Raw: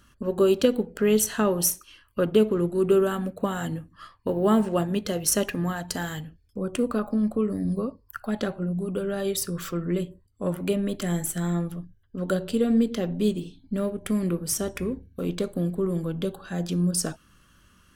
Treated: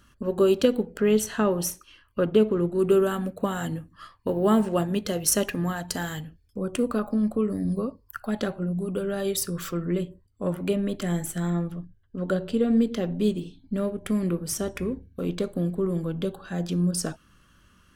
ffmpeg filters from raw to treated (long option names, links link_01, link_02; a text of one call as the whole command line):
ffmpeg -i in.wav -af "asetnsamples=nb_out_samples=441:pad=0,asendcmd='1 equalizer g -9;2.79 equalizer g 1;9.86 equalizer g -5.5;11.5 equalizer g -12;12.73 equalizer g -4.5',equalizer=frequency=15000:width_type=o:width=1.7:gain=-2" out.wav